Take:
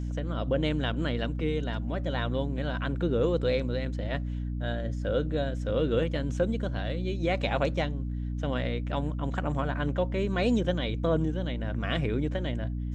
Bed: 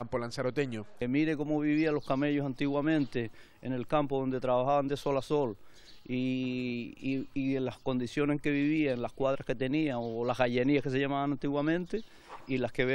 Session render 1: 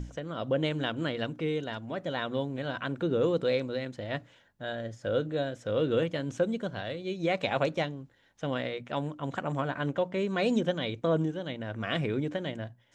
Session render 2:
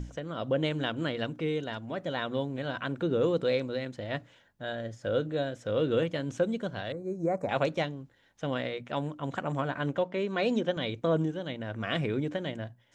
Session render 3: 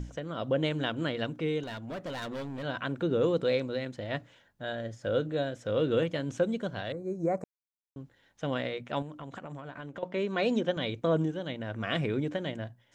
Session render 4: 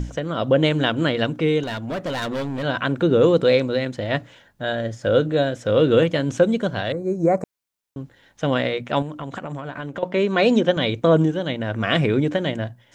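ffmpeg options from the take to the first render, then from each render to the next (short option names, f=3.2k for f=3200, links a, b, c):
-af "bandreject=f=60:t=h:w=6,bandreject=f=120:t=h:w=6,bandreject=f=180:t=h:w=6,bandreject=f=240:t=h:w=6,bandreject=f=300:t=h:w=6"
-filter_complex "[0:a]asettb=1/sr,asplit=3[a][b][c];[a]atrim=end=6.924[d];[b]atrim=start=6.92:end=7.49,asetpts=PTS-STARTPTS,afade=t=in:d=0.004:c=qsin,afade=t=out:st=0.566:d=0.004:c=qsin,asuperstop=centerf=3200:order=4:qfactor=0.5[e];[c]atrim=start=7.486[f];[d][e]acrossfade=d=0.004:c1=hsin:c2=qsin[g];[g][f]acrossfade=d=0.004:c1=qsin:c2=hsin,asettb=1/sr,asplit=3[h][i][j];[h]atrim=end=10.044[k];[i]atrim=start=10.04:end=10.77,asetpts=PTS-STARTPTS,afade=t=in:d=0.004:c=qsin,afade=t=out:st=0.726:d=0.004:c=qsin,highpass=200,lowpass=5.7k[l];[j]atrim=start=10.766[m];[k][l]acrossfade=d=0.004:c1=hsin:c2=qsin[n];[n][m]acrossfade=d=0.004:c1=qsin:c2=hsin"
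-filter_complex "[0:a]asettb=1/sr,asplit=3[a][b][c];[a]atrim=end=1.634[d];[b]atrim=start=1.63:end=2.63,asetpts=PTS-STARTPTS,afade=t=in:d=0.004:c=qsin,afade=t=out:st=0.996:d=0.004:c=qsin,volume=34dB,asoftclip=hard,volume=-34dB[e];[c]atrim=start=2.626[f];[d][e]acrossfade=d=0.004:c1=hsin:c2=qsin[g];[g][f]acrossfade=d=0.004:c1=qsin:c2=hsin,asettb=1/sr,asplit=3[h][i][j];[h]atrim=end=9.024[k];[i]atrim=start=9.02:end=10.03,asetpts=PTS-STARTPTS,afade=t=in:d=0.004:c=qsin,afade=t=out:st=1.006:d=0.004:c=qsin,acompressor=threshold=-37dB:ratio=12:attack=3.2:release=140:knee=1:detection=peak[l];[j]atrim=start=10.026[m];[k][l]acrossfade=d=0.004:c1=hsin:c2=qsin[n];[n][m]acrossfade=d=0.004:c1=qsin:c2=hsin,asplit=3[o][p][q];[o]atrim=end=7.44,asetpts=PTS-STARTPTS,afade=t=out:st=7.436:d=0.004:c=hsin[r];[p]atrim=start=7.44:end=7.96,asetpts=PTS-STARTPTS,volume=0[s];[q]atrim=start=7.96,asetpts=PTS-STARTPTS,afade=t=in:d=0.004:c=hsin[t];[r][s][t]concat=n=3:v=0:a=1"
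-af "volume=11dB"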